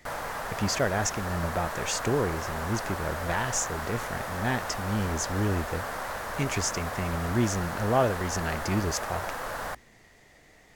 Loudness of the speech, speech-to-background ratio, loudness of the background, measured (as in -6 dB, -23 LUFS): -30.0 LUFS, 4.5 dB, -34.5 LUFS